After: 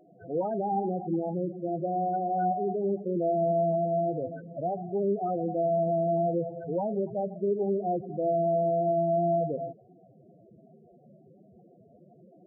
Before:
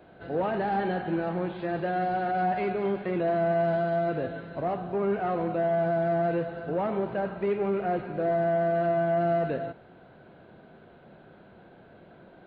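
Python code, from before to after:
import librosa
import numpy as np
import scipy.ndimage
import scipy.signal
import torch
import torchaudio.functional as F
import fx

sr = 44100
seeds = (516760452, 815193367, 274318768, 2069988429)

y = scipy.signal.sosfilt(scipy.signal.butter(2, 1400.0, 'lowpass', fs=sr, output='sos'), x)
y = fx.spec_topn(y, sr, count=8)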